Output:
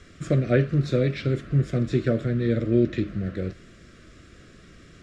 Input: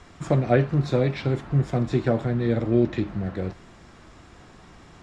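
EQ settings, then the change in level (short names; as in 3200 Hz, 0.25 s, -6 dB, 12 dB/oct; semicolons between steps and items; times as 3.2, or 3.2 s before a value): Butterworth band-stop 870 Hz, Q 1.3; 0.0 dB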